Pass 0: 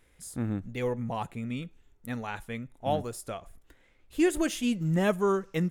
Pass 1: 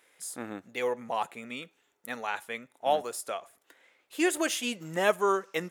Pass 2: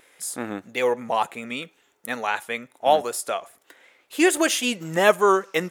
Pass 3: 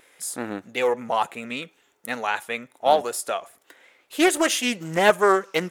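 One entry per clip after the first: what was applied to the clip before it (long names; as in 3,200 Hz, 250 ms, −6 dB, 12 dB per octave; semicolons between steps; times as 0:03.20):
high-pass filter 510 Hz 12 dB per octave; level +4.5 dB
pitch vibrato 5.2 Hz 34 cents; level +8 dB
highs frequency-modulated by the lows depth 0.21 ms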